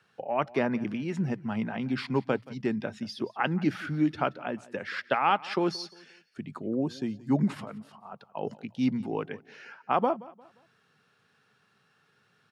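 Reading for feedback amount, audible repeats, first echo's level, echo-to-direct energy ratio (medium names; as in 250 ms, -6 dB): 36%, 2, -20.5 dB, -20.0 dB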